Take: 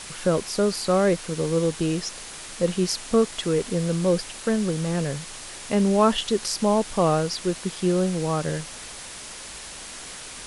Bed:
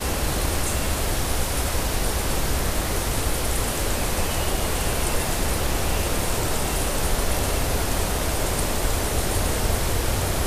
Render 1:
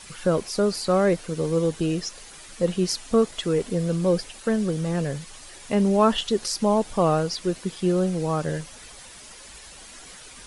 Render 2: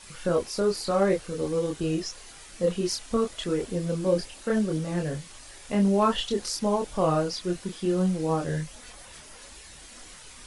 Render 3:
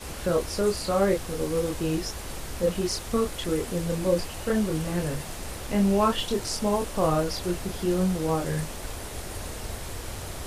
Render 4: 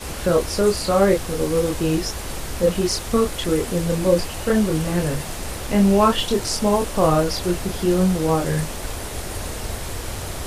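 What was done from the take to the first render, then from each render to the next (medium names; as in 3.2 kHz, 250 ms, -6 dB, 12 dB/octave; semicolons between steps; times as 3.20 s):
noise reduction 9 dB, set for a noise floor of -39 dBFS
hard clipper -9.5 dBFS, distortion -44 dB; chorus voices 6, 0.91 Hz, delay 27 ms, depth 2.1 ms
add bed -13 dB
trim +6.5 dB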